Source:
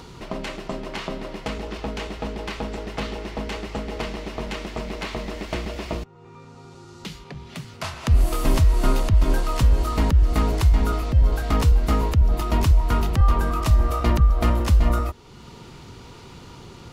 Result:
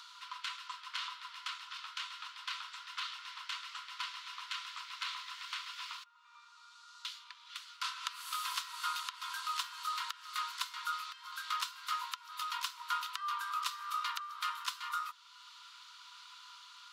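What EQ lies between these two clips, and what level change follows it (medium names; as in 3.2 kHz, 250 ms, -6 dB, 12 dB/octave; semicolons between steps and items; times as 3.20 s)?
rippled Chebyshev high-pass 970 Hz, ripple 9 dB; -1.0 dB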